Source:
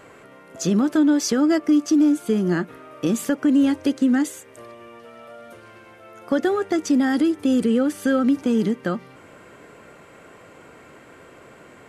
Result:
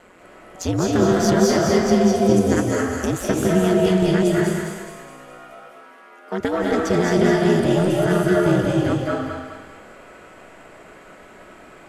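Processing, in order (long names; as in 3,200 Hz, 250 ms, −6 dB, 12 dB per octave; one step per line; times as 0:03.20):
0:02.36–0:03.07: high shelf with overshoot 5,200 Hz +10 dB, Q 3
harmonic generator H 2 −7 dB, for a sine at −8.5 dBFS
0:05.38–0:06.40: Chebyshev high-pass with heavy ripple 280 Hz, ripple 6 dB
ring modulation 90 Hz
feedback echo with a high-pass in the loop 209 ms, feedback 48%, high-pass 1,000 Hz, level −4 dB
convolution reverb RT60 1.2 s, pre-delay 155 ms, DRR −2.5 dB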